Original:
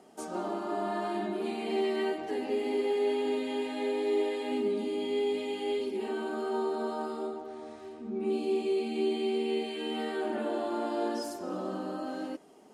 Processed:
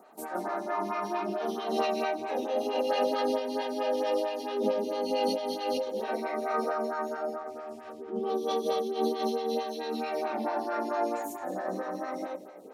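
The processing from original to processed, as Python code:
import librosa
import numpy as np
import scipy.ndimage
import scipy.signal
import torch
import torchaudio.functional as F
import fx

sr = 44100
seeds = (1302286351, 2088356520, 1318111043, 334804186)

y = fx.echo_split(x, sr, split_hz=480.0, low_ms=621, high_ms=173, feedback_pct=52, wet_db=-14.0)
y = fx.formant_shift(y, sr, semitones=5)
y = fx.stagger_phaser(y, sr, hz=4.5)
y = y * librosa.db_to_amplitude(3.0)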